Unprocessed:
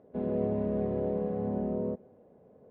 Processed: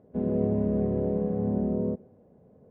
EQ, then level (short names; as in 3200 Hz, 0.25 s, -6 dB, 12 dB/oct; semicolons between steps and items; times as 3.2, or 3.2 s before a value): tone controls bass +9 dB, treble -7 dB; dynamic EQ 370 Hz, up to +4 dB, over -39 dBFS, Q 0.96; -2.0 dB